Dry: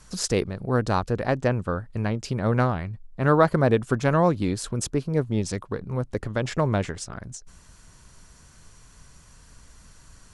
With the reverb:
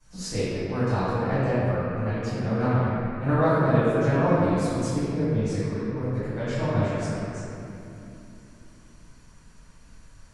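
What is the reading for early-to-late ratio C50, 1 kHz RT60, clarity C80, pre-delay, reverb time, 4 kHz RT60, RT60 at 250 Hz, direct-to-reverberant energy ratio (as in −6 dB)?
−6.5 dB, 2.6 s, −3.5 dB, 5 ms, 2.9 s, 1.9 s, 4.4 s, −18.0 dB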